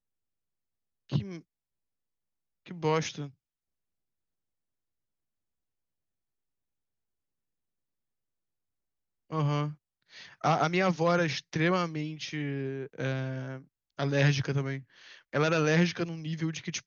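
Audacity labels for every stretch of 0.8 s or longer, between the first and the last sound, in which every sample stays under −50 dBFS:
1.410000	2.660000	silence
3.310000	9.300000	silence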